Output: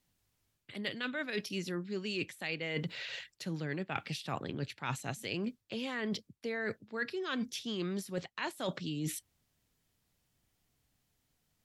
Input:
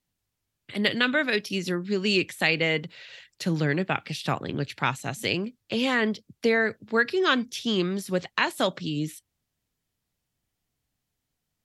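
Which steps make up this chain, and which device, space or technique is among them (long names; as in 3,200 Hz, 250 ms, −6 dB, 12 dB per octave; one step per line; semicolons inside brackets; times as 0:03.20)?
compression on the reversed sound (reversed playback; downward compressor 12 to 1, threshold −37 dBFS, peak gain reduction 20.5 dB; reversed playback)
level +3.5 dB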